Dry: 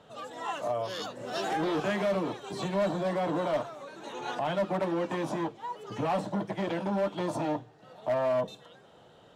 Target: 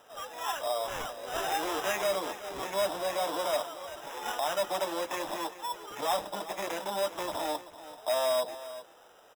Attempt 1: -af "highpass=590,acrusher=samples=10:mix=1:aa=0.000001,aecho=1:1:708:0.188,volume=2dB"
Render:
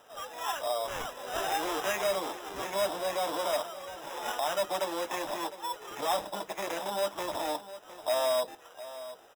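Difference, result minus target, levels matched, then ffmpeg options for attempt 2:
echo 323 ms late
-af "highpass=590,acrusher=samples=10:mix=1:aa=0.000001,aecho=1:1:385:0.188,volume=2dB"

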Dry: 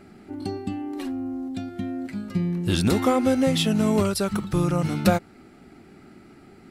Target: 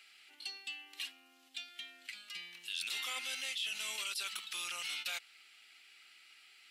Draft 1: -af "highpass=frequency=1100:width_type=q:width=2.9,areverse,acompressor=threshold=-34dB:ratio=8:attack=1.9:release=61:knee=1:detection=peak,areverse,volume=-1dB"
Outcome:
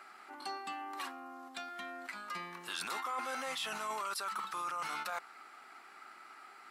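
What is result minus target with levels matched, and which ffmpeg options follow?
1,000 Hz band +15.0 dB
-af "highpass=frequency=2900:width_type=q:width=2.9,areverse,acompressor=threshold=-34dB:ratio=8:attack=1.9:release=61:knee=1:detection=peak,areverse,volume=-1dB"

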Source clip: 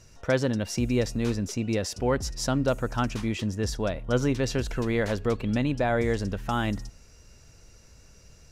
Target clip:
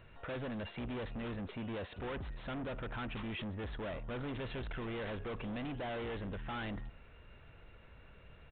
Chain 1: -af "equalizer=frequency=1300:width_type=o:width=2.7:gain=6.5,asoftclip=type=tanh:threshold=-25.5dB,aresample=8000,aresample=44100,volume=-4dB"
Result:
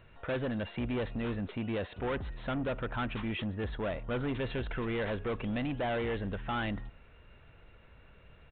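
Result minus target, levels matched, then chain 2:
soft clipping: distortion −4 dB
-af "equalizer=frequency=1300:width_type=o:width=2.7:gain=6.5,asoftclip=type=tanh:threshold=-34.5dB,aresample=8000,aresample=44100,volume=-4dB"

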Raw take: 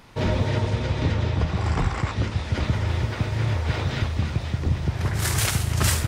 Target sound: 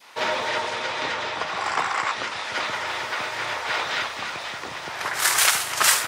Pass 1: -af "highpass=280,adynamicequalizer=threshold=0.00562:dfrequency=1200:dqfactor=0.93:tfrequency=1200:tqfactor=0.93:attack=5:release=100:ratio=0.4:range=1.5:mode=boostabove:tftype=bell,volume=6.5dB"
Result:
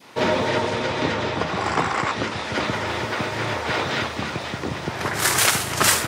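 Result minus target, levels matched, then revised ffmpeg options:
250 Hz band +13.0 dB
-af "highpass=780,adynamicequalizer=threshold=0.00562:dfrequency=1200:dqfactor=0.93:tfrequency=1200:tqfactor=0.93:attack=5:release=100:ratio=0.4:range=1.5:mode=boostabove:tftype=bell,volume=6.5dB"

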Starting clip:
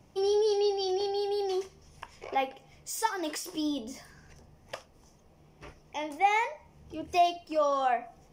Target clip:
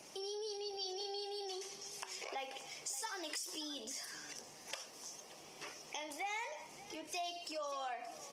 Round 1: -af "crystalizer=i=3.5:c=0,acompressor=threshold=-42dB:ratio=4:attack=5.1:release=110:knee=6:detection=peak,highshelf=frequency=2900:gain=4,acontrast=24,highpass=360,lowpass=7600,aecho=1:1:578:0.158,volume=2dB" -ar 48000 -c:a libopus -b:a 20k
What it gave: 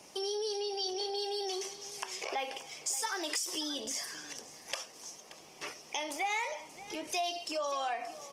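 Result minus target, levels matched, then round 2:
downward compressor: peak gain reduction −8 dB
-af "crystalizer=i=3.5:c=0,acompressor=threshold=-52.5dB:ratio=4:attack=5.1:release=110:knee=6:detection=peak,highshelf=frequency=2900:gain=4,acontrast=24,highpass=360,lowpass=7600,aecho=1:1:578:0.158,volume=2dB" -ar 48000 -c:a libopus -b:a 20k

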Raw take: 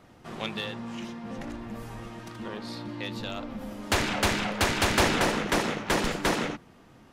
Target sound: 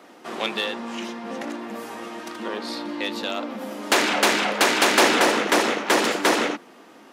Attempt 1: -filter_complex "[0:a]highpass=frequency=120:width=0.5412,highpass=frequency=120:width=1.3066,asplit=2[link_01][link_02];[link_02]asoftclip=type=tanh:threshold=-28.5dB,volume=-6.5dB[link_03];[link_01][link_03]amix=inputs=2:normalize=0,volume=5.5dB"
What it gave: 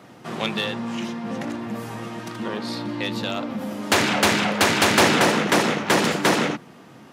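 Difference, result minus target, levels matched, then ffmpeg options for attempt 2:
125 Hz band +13.5 dB
-filter_complex "[0:a]highpass=frequency=260:width=0.5412,highpass=frequency=260:width=1.3066,asplit=2[link_01][link_02];[link_02]asoftclip=type=tanh:threshold=-28.5dB,volume=-6.5dB[link_03];[link_01][link_03]amix=inputs=2:normalize=0,volume=5.5dB"

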